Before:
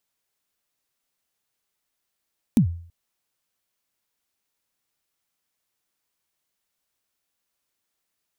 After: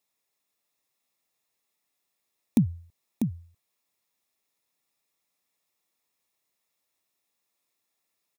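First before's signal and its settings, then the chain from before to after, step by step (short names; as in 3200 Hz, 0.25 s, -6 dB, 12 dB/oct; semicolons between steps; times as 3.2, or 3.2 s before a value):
kick drum length 0.33 s, from 260 Hz, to 85 Hz, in 97 ms, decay 0.51 s, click on, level -10 dB
notch comb 1500 Hz; echo 0.645 s -6 dB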